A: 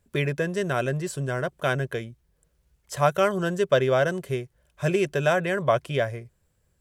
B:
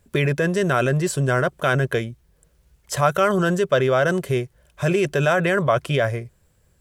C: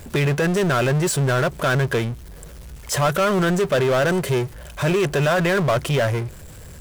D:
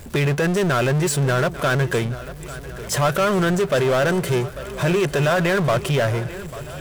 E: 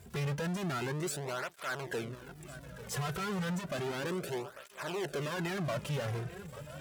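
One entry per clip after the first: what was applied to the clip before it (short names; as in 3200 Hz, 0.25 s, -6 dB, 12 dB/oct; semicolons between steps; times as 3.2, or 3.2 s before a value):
dynamic EQ 1300 Hz, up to +5 dB, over -41 dBFS, Q 4.1; in parallel at +0.5 dB: negative-ratio compressor -27 dBFS, ratio -1
power-law curve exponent 0.5; gain -5.5 dB
swung echo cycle 1.407 s, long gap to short 1.5:1, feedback 46%, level -16 dB
tube stage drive 23 dB, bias 0.75; tape flanging out of phase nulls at 0.32 Hz, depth 3.6 ms; gain -7 dB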